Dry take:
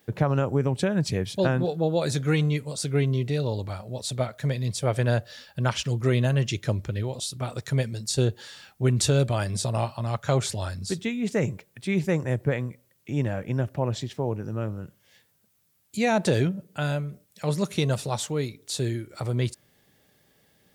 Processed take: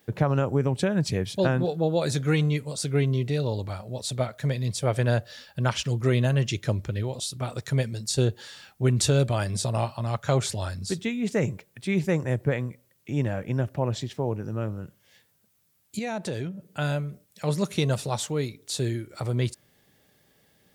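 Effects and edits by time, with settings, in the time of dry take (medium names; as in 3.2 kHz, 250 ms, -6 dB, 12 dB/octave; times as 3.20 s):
15.99–16.68 s: compression 1.5:1, threshold -43 dBFS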